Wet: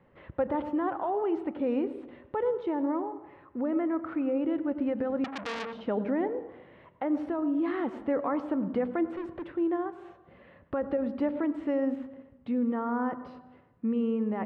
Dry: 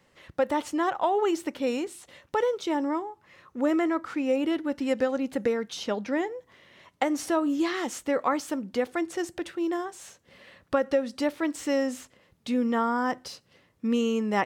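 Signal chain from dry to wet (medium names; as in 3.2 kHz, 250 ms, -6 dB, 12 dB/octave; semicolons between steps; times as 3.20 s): treble shelf 2.4 kHz -11 dB; in parallel at 0 dB: level held to a coarse grid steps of 21 dB; on the sum: peak limiter -19.5 dBFS, peak gain reduction 10.5 dB; gain riding within 4 dB 0.5 s; 9.10–9.56 s: hard clipper -33.5 dBFS, distortion -19 dB; distance through air 500 m; on a send at -13 dB: reverberation RT60 1.1 s, pre-delay 85 ms; 5.24–5.82 s: on the sum: transformer saturation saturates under 2.8 kHz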